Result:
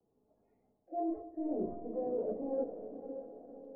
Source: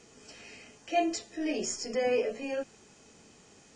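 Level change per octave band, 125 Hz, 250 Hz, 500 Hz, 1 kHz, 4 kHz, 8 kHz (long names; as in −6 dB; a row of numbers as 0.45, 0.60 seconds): can't be measured, −3.0 dB, −5.5 dB, −8.0 dB, below −40 dB, below −40 dB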